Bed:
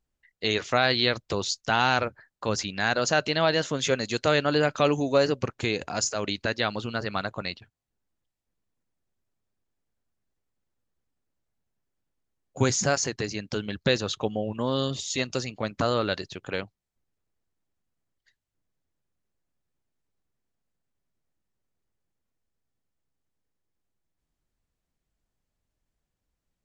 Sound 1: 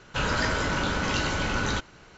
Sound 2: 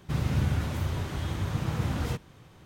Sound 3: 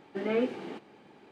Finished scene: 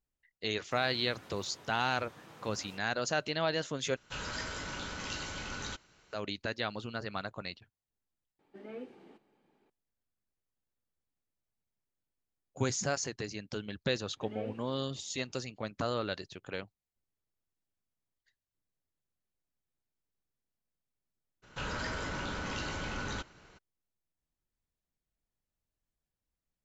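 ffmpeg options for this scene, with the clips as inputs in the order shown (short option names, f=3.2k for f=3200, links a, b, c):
-filter_complex "[1:a]asplit=2[a][b];[3:a]asplit=2[c][d];[0:a]volume=-8.5dB[e];[2:a]highpass=320[f];[a]highshelf=f=2.7k:g=9.5[g];[c]equalizer=f=2.7k:t=o:w=2.8:g=-2.5[h];[b]acompressor=threshold=-35dB:ratio=1.5:attack=3.1:release=23:knee=1:detection=peak[i];[e]asplit=2[j][k];[j]atrim=end=3.964[l];[g]atrim=end=2.17,asetpts=PTS-STARTPTS,volume=-15.5dB[m];[k]atrim=start=6.126[n];[f]atrim=end=2.65,asetpts=PTS-STARTPTS,volume=-15.5dB,afade=t=in:d=0.004:c=hsin,afade=t=out:st=2.646:d=0.004:c=hsin,adelay=620[o];[h]atrim=end=1.31,asetpts=PTS-STARTPTS,volume=-16dB,afade=t=in:d=0.004:c=hsin,afade=t=out:st=1.306:d=0.004:c=hsin,adelay=8390[p];[d]atrim=end=1.31,asetpts=PTS-STARTPTS,volume=-16dB,afade=t=in:d=0.004:c=hsin,afade=t=out:st=1.306:d=0.004:c=hsin,adelay=14060[q];[i]atrim=end=2.17,asetpts=PTS-STARTPTS,volume=-7dB,afade=t=in:d=0.02,afade=t=out:st=2.15:d=0.02,adelay=21420[r];[l][m]acrossfade=d=0.004:c1=hsin:c2=hsin[s];[s][n]acrossfade=d=0.004:c1=hsin:c2=hsin[t];[t][o][p][q][r]amix=inputs=5:normalize=0"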